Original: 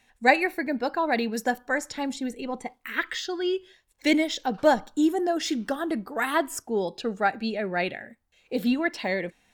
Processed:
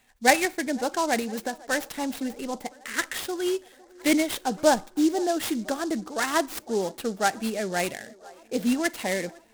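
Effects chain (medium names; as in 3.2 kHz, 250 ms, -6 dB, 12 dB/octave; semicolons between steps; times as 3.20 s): 1.19–1.68 s: compression, threshold -27 dBFS, peak gain reduction 8 dB; feedback echo behind a band-pass 506 ms, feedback 69%, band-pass 690 Hz, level -21.5 dB; delay time shaken by noise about 5.4 kHz, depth 0.046 ms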